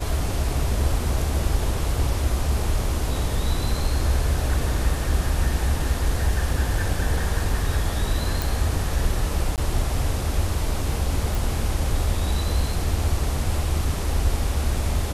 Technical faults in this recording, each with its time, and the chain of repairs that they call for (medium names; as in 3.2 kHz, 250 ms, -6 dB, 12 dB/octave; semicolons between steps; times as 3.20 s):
8.42 s: pop
9.56–9.58 s: dropout 18 ms
11.35 s: pop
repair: de-click; interpolate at 9.56 s, 18 ms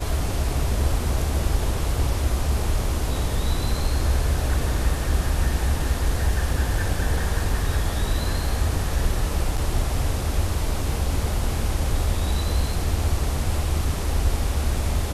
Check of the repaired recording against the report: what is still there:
nothing left